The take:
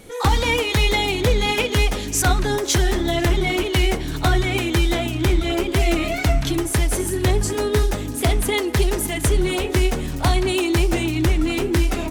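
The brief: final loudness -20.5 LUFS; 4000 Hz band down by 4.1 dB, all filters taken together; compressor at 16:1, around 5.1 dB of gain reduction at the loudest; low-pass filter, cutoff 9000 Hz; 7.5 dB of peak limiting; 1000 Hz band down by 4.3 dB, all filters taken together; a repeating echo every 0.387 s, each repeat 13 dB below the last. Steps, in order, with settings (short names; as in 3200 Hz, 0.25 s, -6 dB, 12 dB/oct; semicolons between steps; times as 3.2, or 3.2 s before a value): LPF 9000 Hz; bell 1000 Hz -6 dB; bell 4000 Hz -5 dB; compressor 16:1, threshold -18 dBFS; limiter -18 dBFS; feedback echo 0.387 s, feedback 22%, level -13 dB; gain +6.5 dB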